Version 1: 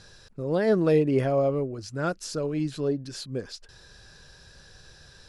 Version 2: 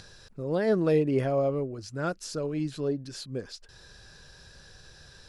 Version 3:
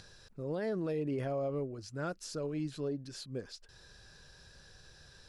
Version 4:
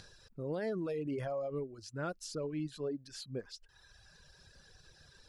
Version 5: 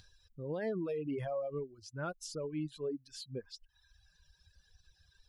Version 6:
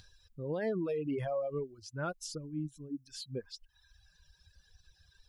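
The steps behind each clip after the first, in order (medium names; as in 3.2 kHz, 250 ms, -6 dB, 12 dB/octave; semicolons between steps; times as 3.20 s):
upward compressor, threshold -43 dBFS; trim -2.5 dB
peak limiter -22.5 dBFS, peak gain reduction 8 dB; trim -5.5 dB
reverb removal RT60 1.5 s
expander on every frequency bin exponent 1.5; trim +1.5 dB
time-frequency box 2.38–3.07 s, 320–5200 Hz -19 dB; trim +2.5 dB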